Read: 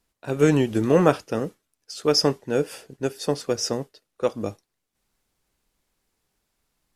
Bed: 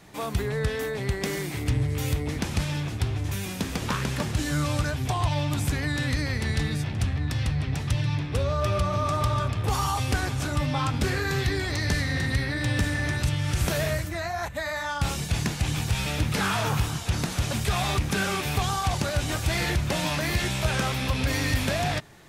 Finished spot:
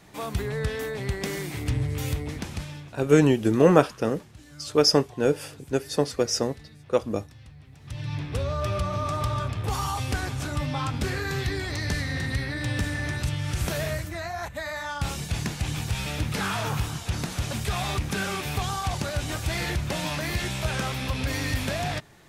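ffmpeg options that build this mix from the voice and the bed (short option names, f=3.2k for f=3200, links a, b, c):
-filter_complex "[0:a]adelay=2700,volume=0.5dB[a];[1:a]volume=17.5dB,afade=t=out:st=2.07:d=0.97:silence=0.1,afade=t=in:st=7.8:d=0.43:silence=0.112202[b];[a][b]amix=inputs=2:normalize=0"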